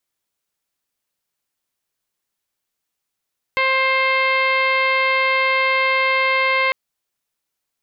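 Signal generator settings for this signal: steady additive tone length 3.15 s, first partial 528 Hz, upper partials 2.5/-4.5/5/-3/-8.5/-12.5/-11/-20 dB, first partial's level -23 dB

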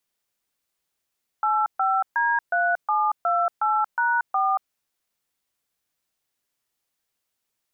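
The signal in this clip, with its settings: DTMF "85D3728#4", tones 0.231 s, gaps 0.133 s, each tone -21.5 dBFS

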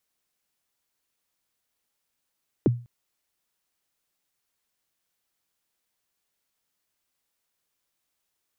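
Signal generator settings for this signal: kick drum length 0.20 s, from 460 Hz, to 120 Hz, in 22 ms, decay 0.34 s, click off, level -13 dB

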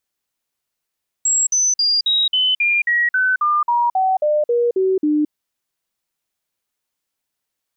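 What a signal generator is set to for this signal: stepped sine 7630 Hz down, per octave 3, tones 15, 0.22 s, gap 0.05 s -13.5 dBFS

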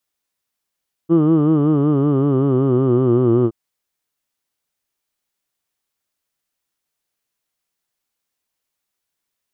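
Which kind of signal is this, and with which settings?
formant vowel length 2.42 s, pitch 161 Hz, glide -5.5 st, F1 350 Hz, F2 1200 Hz, F3 3000 Hz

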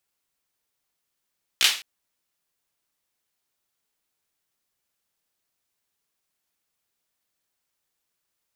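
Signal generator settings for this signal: hand clap length 0.21 s, bursts 3, apart 16 ms, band 3100 Hz, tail 0.37 s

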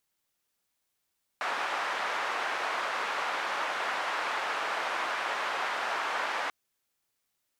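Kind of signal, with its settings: noise band 830–1300 Hz, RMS -32 dBFS 5.09 s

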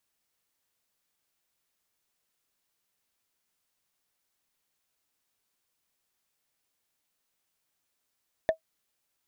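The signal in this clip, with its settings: wood hit, lowest mode 643 Hz, decay 0.10 s, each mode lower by 9.5 dB, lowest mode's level -15 dB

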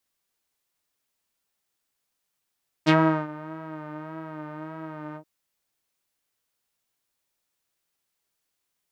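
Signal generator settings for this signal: synth patch with vibrato D#4, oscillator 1 saw, interval 0 st, detune 25 cents, sub -9 dB, filter lowpass, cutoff 500 Hz, Q 1.6, filter envelope 3.5 oct, filter decay 0.09 s, attack 31 ms, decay 0.38 s, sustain -21.5 dB, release 0.08 s, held 2.30 s, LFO 1.7 Hz, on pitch 48 cents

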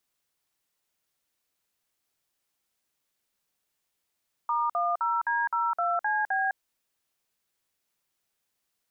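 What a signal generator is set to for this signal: DTMF "*10D02CB", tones 0.207 s, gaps 52 ms, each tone -26.5 dBFS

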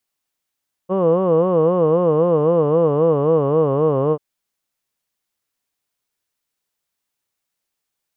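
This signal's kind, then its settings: formant vowel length 3.29 s, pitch 179 Hz, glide -4 st, vibrato 3.8 Hz, vibrato depth 1.5 st, F1 490 Hz, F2 1100 Hz, F3 2900 Hz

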